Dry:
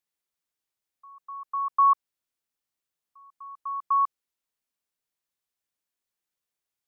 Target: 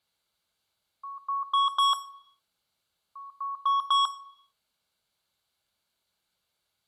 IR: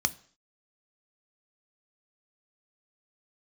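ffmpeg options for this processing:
-filter_complex "[0:a]asoftclip=type=hard:threshold=-30dB[link_01];[1:a]atrim=start_sample=2205,asetrate=28665,aresample=44100[link_02];[link_01][link_02]afir=irnorm=-1:irlink=0"

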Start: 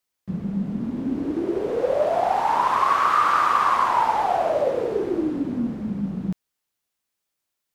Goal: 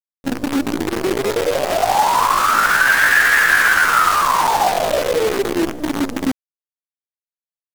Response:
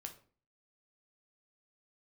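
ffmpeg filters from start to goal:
-af "acrusher=bits=5:dc=4:mix=0:aa=0.000001,asetrate=62367,aresample=44100,atempo=0.707107,volume=6dB"

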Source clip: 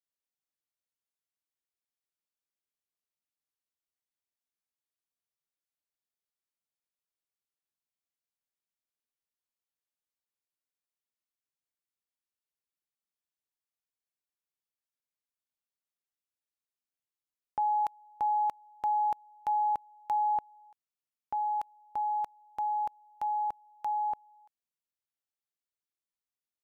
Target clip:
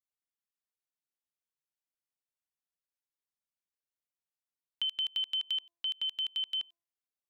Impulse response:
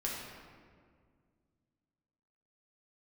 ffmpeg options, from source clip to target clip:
-af "asetrate=160965,aresample=44100,bandreject=frequency=340.3:width_type=h:width=4,bandreject=frequency=680.6:width_type=h:width=4,bandreject=frequency=1020.9:width_type=h:width=4,acompressor=threshold=-30dB:ratio=6"

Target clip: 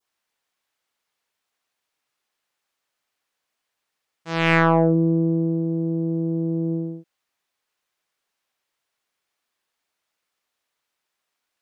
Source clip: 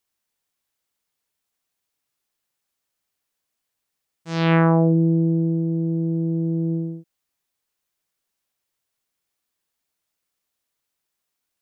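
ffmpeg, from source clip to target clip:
ffmpeg -i in.wav -filter_complex "[0:a]adynamicequalizer=threshold=0.0112:dfrequency=2300:dqfactor=1.2:tfrequency=2300:tqfactor=1.2:attack=5:release=100:ratio=0.375:range=3.5:mode=boostabove:tftype=bell,asplit=2[link_01][link_02];[link_02]highpass=frequency=720:poles=1,volume=12dB,asoftclip=type=tanh:threshold=-3dB[link_03];[link_01][link_03]amix=inputs=2:normalize=0,lowpass=frequency=2600:poles=1,volume=-6dB" out.wav

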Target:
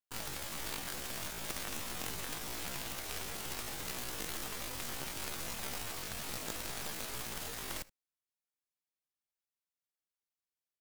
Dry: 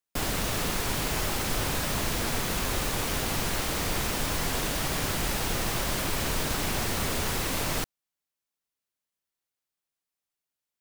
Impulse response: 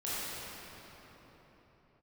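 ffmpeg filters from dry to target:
-af "aeval=exprs='0.178*(cos(1*acos(clip(val(0)/0.178,-1,1)))-cos(1*PI/2))+0.02*(cos(2*acos(clip(val(0)/0.178,-1,1)))-cos(2*PI/2))+0.0708*(cos(3*acos(clip(val(0)/0.178,-1,1)))-cos(3*PI/2))+0.0126*(cos(7*acos(clip(val(0)/0.178,-1,1)))-cos(7*PI/2))+0.01*(cos(8*acos(clip(val(0)/0.178,-1,1)))-cos(8*PI/2))':channel_layout=same,aecho=1:1:71:0.0891,asetrate=76340,aresample=44100,atempo=0.577676,volume=-3.5dB"

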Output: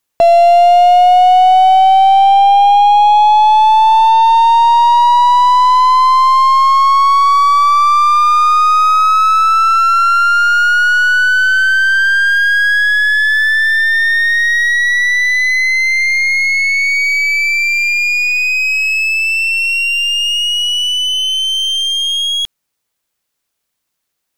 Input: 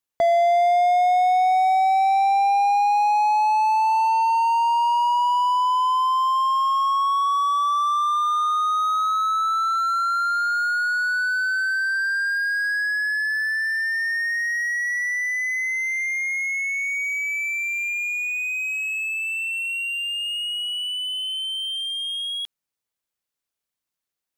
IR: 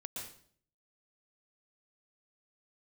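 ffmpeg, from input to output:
-af "acontrast=28,aeval=exprs='0.398*(cos(1*acos(clip(val(0)/0.398,-1,1)))-cos(1*PI/2))+0.0282*(cos(6*acos(clip(val(0)/0.398,-1,1)))-cos(6*PI/2))':channel_layout=same,asoftclip=type=tanh:threshold=-8dB,volume=7.5dB"

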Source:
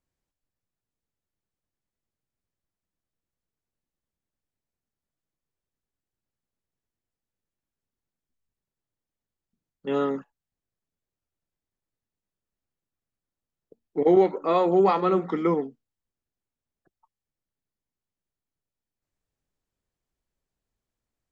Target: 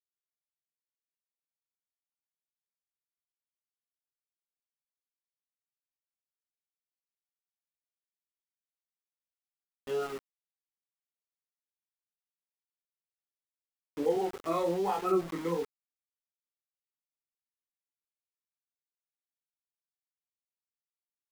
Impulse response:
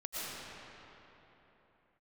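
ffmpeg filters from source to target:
-filter_complex "[0:a]afftfilt=real='re*pow(10,12/40*sin(2*PI*(1.1*log(max(b,1)*sr/1024/100)/log(2)-(-1.4)*(pts-256)/sr)))':imag='im*pow(10,12/40*sin(2*PI*(1.1*log(max(b,1)*sr/1024/100)/log(2)-(-1.4)*(pts-256)/sr)))':win_size=1024:overlap=0.75,asplit=2[link_01][link_02];[link_02]adelay=24,volume=-8dB[link_03];[link_01][link_03]amix=inputs=2:normalize=0,flanger=delay=19.5:depth=5.4:speed=1.2,aeval=exprs='val(0)*gte(abs(val(0)),0.0266)':channel_layout=same,volume=-8.5dB"

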